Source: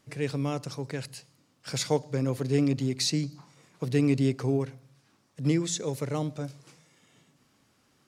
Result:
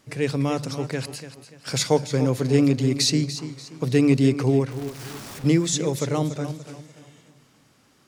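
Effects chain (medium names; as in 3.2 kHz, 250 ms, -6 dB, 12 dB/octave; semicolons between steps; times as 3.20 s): 4.71–5.44 s: one-bit comparator; de-hum 48.76 Hz, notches 4; modulated delay 290 ms, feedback 36%, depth 58 cents, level -12 dB; trim +6.5 dB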